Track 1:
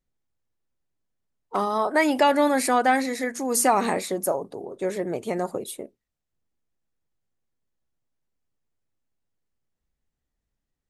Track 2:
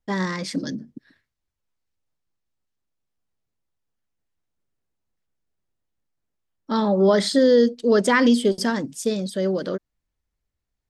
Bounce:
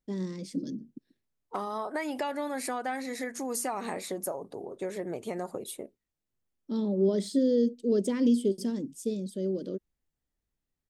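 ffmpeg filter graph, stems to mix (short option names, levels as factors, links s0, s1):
-filter_complex "[0:a]acompressor=threshold=0.0447:ratio=4,volume=0.631[s0];[1:a]highpass=180,aexciter=amount=4.1:drive=6.8:freq=2400,firequalizer=gain_entry='entry(360,0);entry(740,-17);entry(1200,-21);entry(4400,-26);entry(10000,-21)':delay=0.05:min_phase=1,volume=0.562[s1];[s0][s1]amix=inputs=2:normalize=0"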